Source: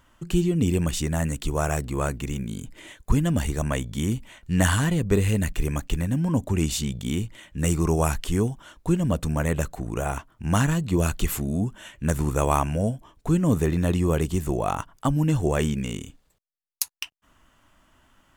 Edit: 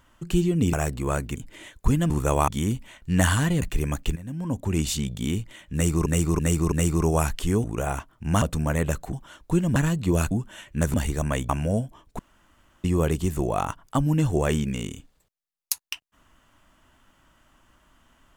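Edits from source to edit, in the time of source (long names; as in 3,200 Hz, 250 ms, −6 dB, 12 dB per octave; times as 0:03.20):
0:00.73–0:01.64: remove
0:02.27–0:02.60: remove
0:03.34–0:03.89: swap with 0:12.21–0:12.59
0:05.03–0:05.46: remove
0:06.00–0:06.69: fade in, from −16.5 dB
0:07.57–0:07.90: repeat, 4 plays
0:08.49–0:09.12: swap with 0:09.83–0:10.61
0:11.16–0:11.58: remove
0:13.29–0:13.94: fill with room tone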